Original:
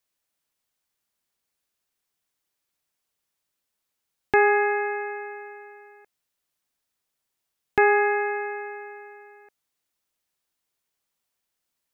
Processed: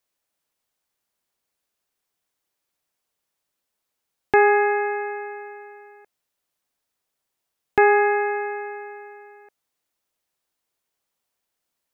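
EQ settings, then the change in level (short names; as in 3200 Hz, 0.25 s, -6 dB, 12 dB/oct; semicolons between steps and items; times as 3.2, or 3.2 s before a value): bell 600 Hz +4 dB 2.1 oct; 0.0 dB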